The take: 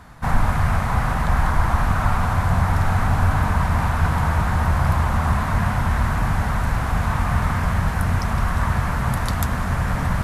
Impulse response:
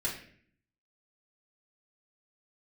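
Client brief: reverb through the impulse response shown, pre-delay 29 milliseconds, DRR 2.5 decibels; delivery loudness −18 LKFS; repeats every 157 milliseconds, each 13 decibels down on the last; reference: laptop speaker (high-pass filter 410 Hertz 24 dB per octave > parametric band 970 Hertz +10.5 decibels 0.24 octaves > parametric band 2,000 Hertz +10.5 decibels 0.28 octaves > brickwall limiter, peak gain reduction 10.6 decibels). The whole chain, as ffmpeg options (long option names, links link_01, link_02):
-filter_complex "[0:a]aecho=1:1:157|314|471:0.224|0.0493|0.0108,asplit=2[link_01][link_02];[1:a]atrim=start_sample=2205,adelay=29[link_03];[link_02][link_03]afir=irnorm=-1:irlink=0,volume=-7dB[link_04];[link_01][link_04]amix=inputs=2:normalize=0,highpass=frequency=410:width=0.5412,highpass=frequency=410:width=1.3066,equalizer=frequency=970:width_type=o:width=0.24:gain=10.5,equalizer=frequency=2000:width_type=o:width=0.28:gain=10.5,volume=6.5dB,alimiter=limit=-10dB:level=0:latency=1"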